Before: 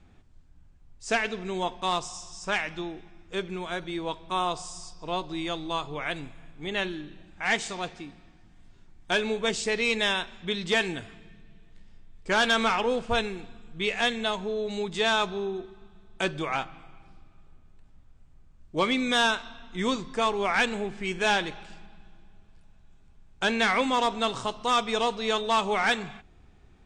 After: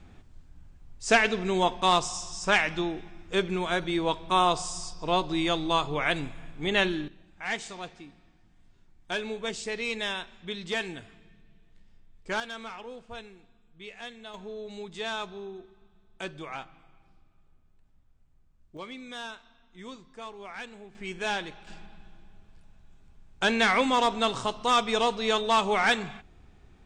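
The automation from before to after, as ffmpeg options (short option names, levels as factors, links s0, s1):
-af "asetnsamples=n=441:p=0,asendcmd='7.08 volume volume -6dB;12.4 volume volume -16dB;14.34 volume volume -9dB;18.77 volume volume -16dB;20.95 volume volume -6dB;21.67 volume volume 1dB',volume=1.78"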